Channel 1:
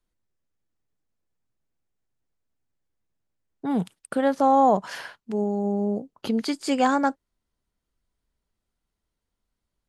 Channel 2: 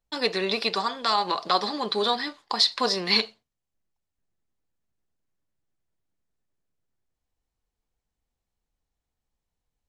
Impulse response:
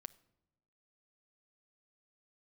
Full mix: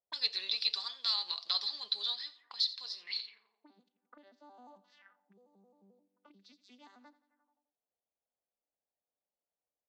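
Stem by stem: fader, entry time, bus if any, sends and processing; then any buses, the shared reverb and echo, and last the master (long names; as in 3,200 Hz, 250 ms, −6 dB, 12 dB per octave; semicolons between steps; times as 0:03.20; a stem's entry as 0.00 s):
−9.0 dB, 0.00 s, no send, echo send −17 dB, vocoder with an arpeggio as carrier major triad, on G3, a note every 88 ms; low-shelf EQ 220 Hz +4 dB
−1.5 dB, 0.00 s, no send, echo send −24 dB, automatic ducking −17 dB, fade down 1.85 s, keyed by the first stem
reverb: not used
echo: repeating echo 87 ms, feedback 49%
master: envelope filter 600–4,200 Hz, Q 3.1, up, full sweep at −33 dBFS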